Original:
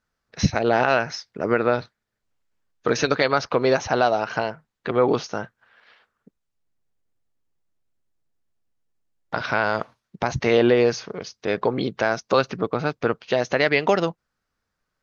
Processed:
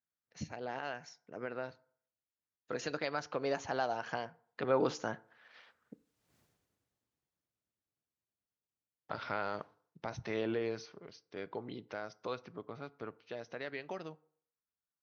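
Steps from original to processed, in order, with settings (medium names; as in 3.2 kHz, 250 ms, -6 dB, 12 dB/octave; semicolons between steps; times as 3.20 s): Doppler pass-by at 6.38 s, 19 m/s, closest 1.5 m; high-pass 74 Hz; FDN reverb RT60 0.58 s, low-frequency decay 0.85×, high-frequency decay 0.55×, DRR 17.5 dB; trim +16 dB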